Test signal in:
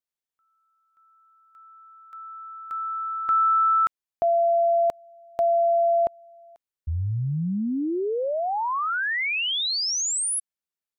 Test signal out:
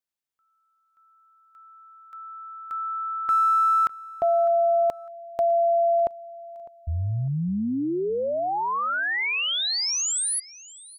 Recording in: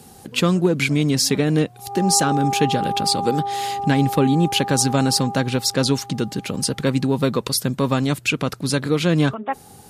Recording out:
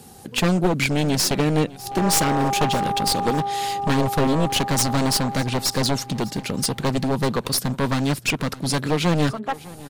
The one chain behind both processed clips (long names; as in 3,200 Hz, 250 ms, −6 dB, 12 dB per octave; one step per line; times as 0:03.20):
wavefolder on the positive side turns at −17 dBFS
on a send: repeating echo 604 ms, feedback 29%, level −20 dB